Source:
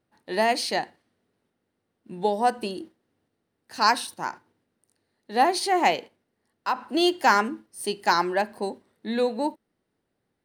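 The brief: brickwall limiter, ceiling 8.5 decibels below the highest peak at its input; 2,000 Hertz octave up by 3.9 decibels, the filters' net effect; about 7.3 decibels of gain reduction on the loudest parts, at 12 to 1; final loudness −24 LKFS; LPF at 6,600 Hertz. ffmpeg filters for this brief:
ffmpeg -i in.wav -af "lowpass=6600,equalizer=frequency=2000:width_type=o:gain=5,acompressor=threshold=-20dB:ratio=12,volume=6.5dB,alimiter=limit=-11.5dB:level=0:latency=1" out.wav

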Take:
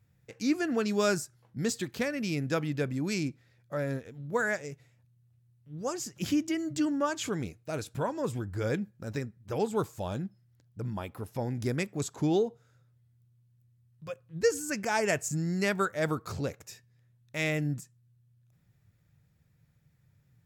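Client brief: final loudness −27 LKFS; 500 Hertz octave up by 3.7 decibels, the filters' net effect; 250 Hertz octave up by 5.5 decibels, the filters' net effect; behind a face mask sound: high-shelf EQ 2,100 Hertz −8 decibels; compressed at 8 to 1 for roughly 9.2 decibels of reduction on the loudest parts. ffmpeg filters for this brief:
ffmpeg -i in.wav -af "equalizer=frequency=250:width_type=o:gain=6.5,equalizer=frequency=500:width_type=o:gain=3,acompressor=threshold=-26dB:ratio=8,highshelf=frequency=2100:gain=-8,volume=6dB" out.wav

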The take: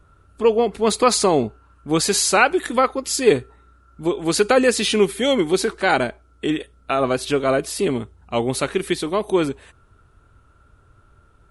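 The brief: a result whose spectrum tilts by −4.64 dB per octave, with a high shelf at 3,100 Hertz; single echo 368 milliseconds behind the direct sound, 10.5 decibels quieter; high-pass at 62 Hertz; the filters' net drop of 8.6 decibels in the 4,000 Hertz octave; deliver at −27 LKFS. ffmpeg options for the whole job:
ffmpeg -i in.wav -af "highpass=62,highshelf=frequency=3100:gain=-4,equalizer=frequency=4000:width_type=o:gain=-8,aecho=1:1:368:0.299,volume=-6.5dB" out.wav

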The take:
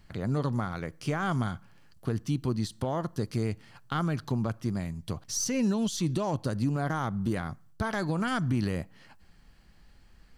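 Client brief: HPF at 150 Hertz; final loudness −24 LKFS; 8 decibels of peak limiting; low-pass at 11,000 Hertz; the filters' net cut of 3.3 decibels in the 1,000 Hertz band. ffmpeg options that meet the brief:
ffmpeg -i in.wav -af "highpass=150,lowpass=11000,equalizer=frequency=1000:width_type=o:gain=-4.5,volume=12dB,alimiter=limit=-14dB:level=0:latency=1" out.wav

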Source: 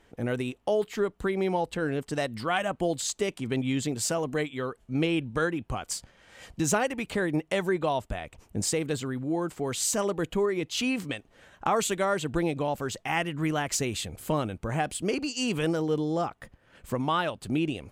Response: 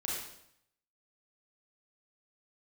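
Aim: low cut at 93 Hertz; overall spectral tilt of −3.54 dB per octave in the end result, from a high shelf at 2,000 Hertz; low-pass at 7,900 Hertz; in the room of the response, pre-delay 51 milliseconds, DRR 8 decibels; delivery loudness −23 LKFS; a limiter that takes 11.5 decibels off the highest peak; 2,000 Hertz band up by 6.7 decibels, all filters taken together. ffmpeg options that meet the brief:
-filter_complex "[0:a]highpass=93,lowpass=7900,highshelf=frequency=2000:gain=6,equalizer=frequency=2000:width_type=o:gain=5,alimiter=limit=-18.5dB:level=0:latency=1,asplit=2[link_01][link_02];[1:a]atrim=start_sample=2205,adelay=51[link_03];[link_02][link_03]afir=irnorm=-1:irlink=0,volume=-11dB[link_04];[link_01][link_04]amix=inputs=2:normalize=0,volume=5.5dB"

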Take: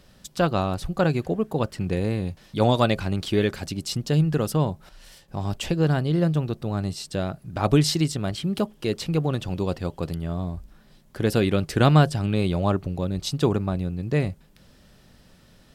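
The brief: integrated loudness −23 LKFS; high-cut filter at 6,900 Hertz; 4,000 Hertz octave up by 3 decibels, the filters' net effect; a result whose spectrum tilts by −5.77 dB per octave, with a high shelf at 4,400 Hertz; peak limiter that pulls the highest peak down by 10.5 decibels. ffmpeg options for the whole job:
ffmpeg -i in.wav -af "lowpass=6900,equalizer=frequency=4000:width_type=o:gain=8.5,highshelf=frequency=4400:gain=-8.5,volume=3.5dB,alimiter=limit=-10.5dB:level=0:latency=1" out.wav

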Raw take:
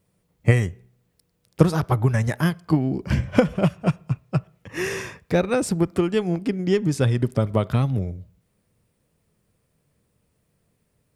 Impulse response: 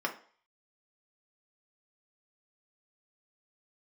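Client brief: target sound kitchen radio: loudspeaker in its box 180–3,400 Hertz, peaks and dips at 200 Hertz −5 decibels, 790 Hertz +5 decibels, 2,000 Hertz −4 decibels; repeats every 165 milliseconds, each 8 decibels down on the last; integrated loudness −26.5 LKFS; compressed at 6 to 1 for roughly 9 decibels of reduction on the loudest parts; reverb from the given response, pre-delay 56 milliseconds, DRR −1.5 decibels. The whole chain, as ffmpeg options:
-filter_complex "[0:a]acompressor=threshold=-20dB:ratio=6,aecho=1:1:165|330|495|660|825:0.398|0.159|0.0637|0.0255|0.0102,asplit=2[link_01][link_02];[1:a]atrim=start_sample=2205,adelay=56[link_03];[link_02][link_03]afir=irnorm=-1:irlink=0,volume=-5.5dB[link_04];[link_01][link_04]amix=inputs=2:normalize=0,highpass=180,equalizer=frequency=200:width_type=q:width=4:gain=-5,equalizer=frequency=790:width_type=q:width=4:gain=5,equalizer=frequency=2000:width_type=q:width=4:gain=-4,lowpass=frequency=3400:width=0.5412,lowpass=frequency=3400:width=1.3066,volume=-0.5dB"

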